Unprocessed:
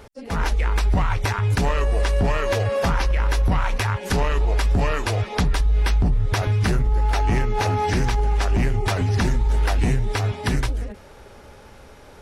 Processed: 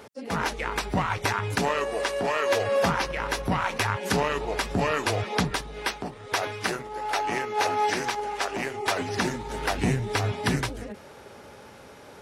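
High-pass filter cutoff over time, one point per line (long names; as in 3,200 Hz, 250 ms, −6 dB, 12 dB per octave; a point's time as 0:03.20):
0:01.14 160 Hz
0:02.39 390 Hz
0:02.89 160 Hz
0:05.54 160 Hz
0:06.05 410 Hz
0:08.81 410 Hz
0:09.81 130 Hz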